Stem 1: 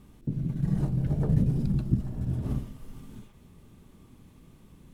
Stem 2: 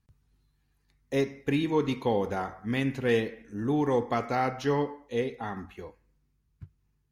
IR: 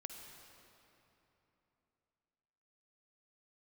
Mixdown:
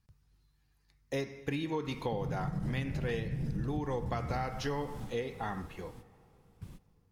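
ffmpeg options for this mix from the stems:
-filter_complex "[0:a]acompressor=threshold=0.0355:ratio=6,adelay=1850,volume=1.19,asplit=2[s0][s1];[s1]volume=0.282[s2];[1:a]volume=0.841,asplit=3[s3][s4][s5];[s4]volume=0.299[s6];[s5]apad=whole_len=299184[s7];[s0][s7]sidechaingate=range=0.0224:threshold=0.00141:ratio=16:detection=peak[s8];[2:a]atrim=start_sample=2205[s9];[s2][s6]amix=inputs=2:normalize=0[s10];[s10][s9]afir=irnorm=-1:irlink=0[s11];[s8][s3][s11]amix=inputs=3:normalize=0,equalizer=f=250:t=o:w=0.33:g=-6,equalizer=f=400:t=o:w=0.33:g=-4,equalizer=f=5000:t=o:w=0.33:g=5,acompressor=threshold=0.0282:ratio=6"

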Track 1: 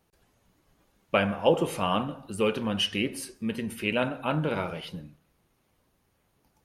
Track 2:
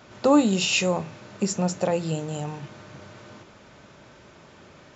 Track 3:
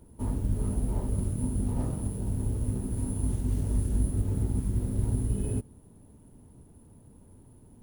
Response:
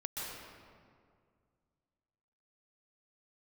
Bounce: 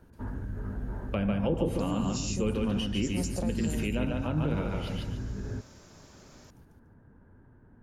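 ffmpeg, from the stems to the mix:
-filter_complex "[0:a]volume=0.944,asplit=3[s0][s1][s2];[s1]volume=0.668[s3];[1:a]highshelf=f=4100:t=q:w=1.5:g=9,adelay=1550,volume=0.473[s4];[2:a]lowpass=f=1600:t=q:w=8.9,alimiter=level_in=1.06:limit=0.0631:level=0:latency=1:release=89,volume=0.944,volume=0.708[s5];[s2]apad=whole_len=286791[s6];[s4][s6]sidechaincompress=threshold=0.0316:ratio=8:attack=16:release=368[s7];[s3]aecho=0:1:145|290|435|580:1|0.26|0.0676|0.0176[s8];[s0][s7][s5][s8]amix=inputs=4:normalize=0,acrossover=split=370[s9][s10];[s10]acompressor=threshold=0.0158:ratio=6[s11];[s9][s11]amix=inputs=2:normalize=0"

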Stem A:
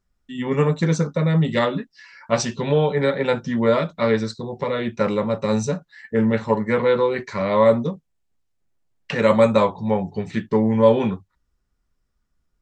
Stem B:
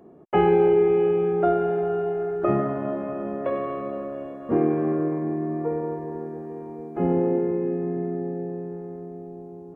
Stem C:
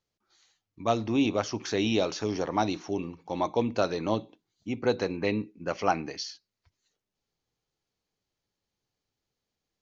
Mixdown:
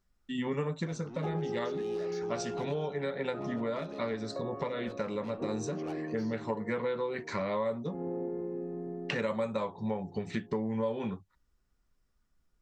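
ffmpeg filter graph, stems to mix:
-filter_complex "[0:a]volume=0.841[s0];[1:a]lowpass=1600,adelay=900,volume=0.282[s1];[2:a]asoftclip=type=tanh:threshold=0.0398,volume=0.266,asplit=2[s2][s3];[s3]apad=whole_len=556129[s4];[s0][s4]sidechaincompress=threshold=0.00398:ratio=8:attack=16:release=969[s5];[s5][s1][s2]amix=inputs=3:normalize=0,equalizer=f=80:t=o:w=2.1:g=-2.5,acompressor=threshold=0.0282:ratio=5"

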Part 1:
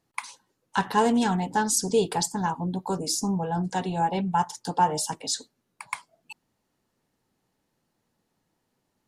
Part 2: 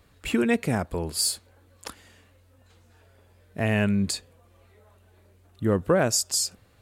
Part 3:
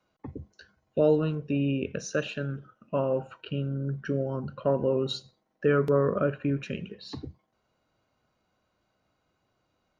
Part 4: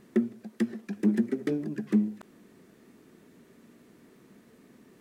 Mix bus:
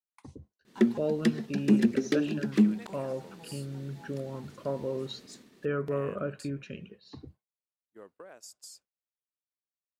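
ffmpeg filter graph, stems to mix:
-filter_complex "[0:a]equalizer=f=1700:w=1.5:g=-4.5,acompressor=threshold=0.0224:ratio=1.5,volume=11.2,asoftclip=hard,volume=0.0891,volume=0.15[s0];[1:a]highpass=410,acompressor=threshold=0.0562:ratio=10,adelay=2300,volume=0.112[s1];[2:a]volume=0.422,asplit=2[s2][s3];[3:a]equalizer=f=4100:t=o:w=1.4:g=10,adelay=650,volume=1.26[s4];[s3]apad=whole_len=400136[s5];[s0][s5]sidechaincompress=threshold=0.00398:ratio=8:attack=8.8:release=220[s6];[s6][s1][s2][s4]amix=inputs=4:normalize=0,agate=range=0.0224:threshold=0.00447:ratio=3:detection=peak"

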